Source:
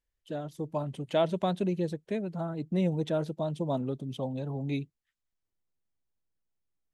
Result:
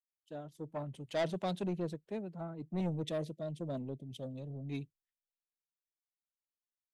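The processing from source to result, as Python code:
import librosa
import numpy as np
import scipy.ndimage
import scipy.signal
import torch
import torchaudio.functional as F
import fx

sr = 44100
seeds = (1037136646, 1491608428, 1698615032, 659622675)

y = fx.ellip_bandstop(x, sr, low_hz=640.0, high_hz=1900.0, order=3, stop_db=40, at=(2.8, 4.81))
y = 10.0 ** (-26.0 / 20.0) * np.tanh(y / 10.0 ** (-26.0 / 20.0))
y = fx.band_widen(y, sr, depth_pct=100)
y = y * librosa.db_to_amplitude(-5.0)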